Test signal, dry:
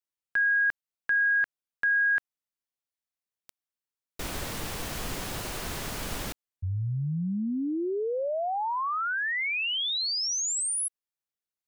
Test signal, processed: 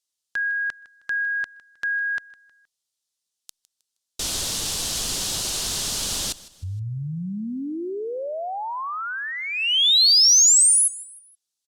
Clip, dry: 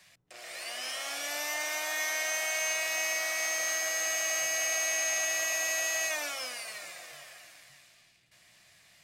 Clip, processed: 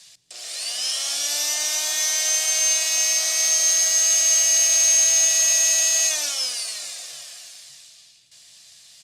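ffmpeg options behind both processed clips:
-filter_complex "[0:a]lowpass=7.8k,aexciter=amount=4:drive=8.2:freq=3.1k,asplit=2[a][b];[b]aecho=0:1:157|314|471:0.112|0.0438|0.0171[c];[a][c]amix=inputs=2:normalize=0" -ar 48000 -c:a libopus -b:a 64k

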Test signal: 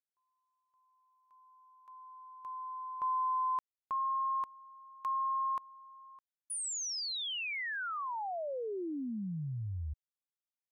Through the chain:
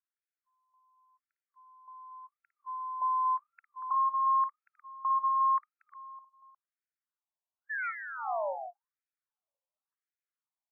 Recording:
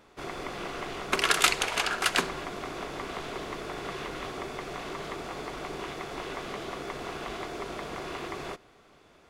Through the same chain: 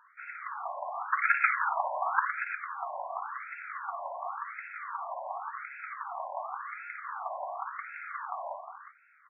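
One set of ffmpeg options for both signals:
-filter_complex "[0:a]asplit=2[a][b];[b]highpass=f=720:p=1,volume=7dB,asoftclip=type=tanh:threshold=-6dB[c];[a][c]amix=inputs=2:normalize=0,lowpass=f=1k:p=1,volume=-6dB,aecho=1:1:55|56|235|314|358:0.282|0.2|0.316|0.133|0.335,afftfilt=real='re*between(b*sr/1024,760*pow(1900/760,0.5+0.5*sin(2*PI*0.91*pts/sr))/1.41,760*pow(1900/760,0.5+0.5*sin(2*PI*0.91*pts/sr))*1.41)':imag='im*between(b*sr/1024,760*pow(1900/760,0.5+0.5*sin(2*PI*0.91*pts/sr))/1.41,760*pow(1900/760,0.5+0.5*sin(2*PI*0.91*pts/sr))*1.41)':win_size=1024:overlap=0.75,volume=5dB"

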